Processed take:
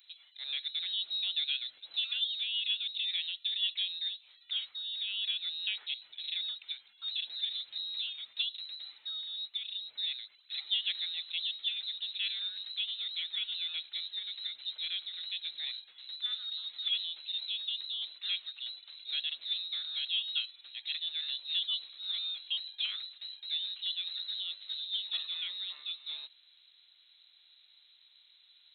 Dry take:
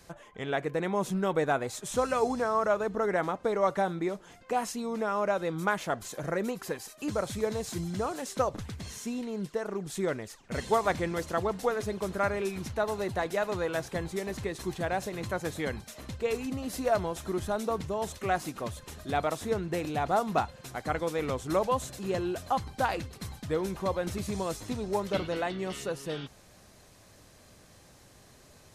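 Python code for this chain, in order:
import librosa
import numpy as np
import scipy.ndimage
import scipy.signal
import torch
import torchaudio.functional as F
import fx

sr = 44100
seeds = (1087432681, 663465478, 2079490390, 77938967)

y = fx.freq_invert(x, sr, carrier_hz=4000)
y = np.diff(y, prepend=0.0)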